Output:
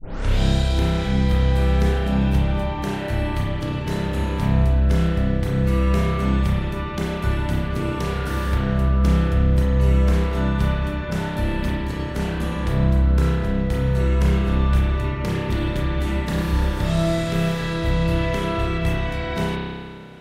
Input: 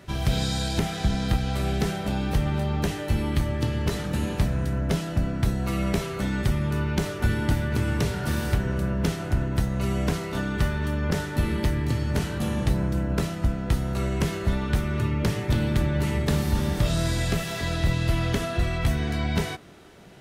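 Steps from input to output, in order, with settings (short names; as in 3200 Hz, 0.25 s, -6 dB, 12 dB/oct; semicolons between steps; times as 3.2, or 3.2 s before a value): tape start at the beginning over 0.37 s; spring tank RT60 1.8 s, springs 30 ms, chirp 25 ms, DRR -6.5 dB; gain -3.5 dB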